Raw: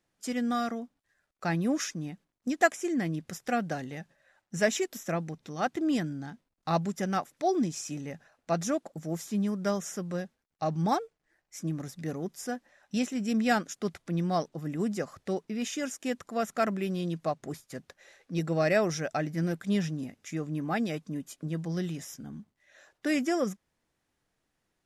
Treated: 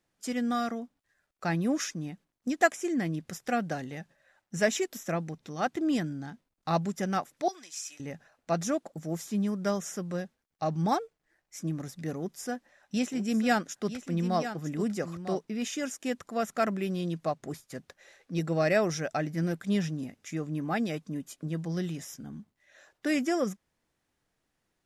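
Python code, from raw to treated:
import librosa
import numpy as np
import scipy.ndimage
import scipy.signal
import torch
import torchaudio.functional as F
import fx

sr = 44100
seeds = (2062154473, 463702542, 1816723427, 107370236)

y = fx.highpass(x, sr, hz=1400.0, slope=12, at=(7.48, 8.0))
y = fx.echo_single(y, sr, ms=950, db=-10.5, at=(13.12, 15.42), fade=0.02)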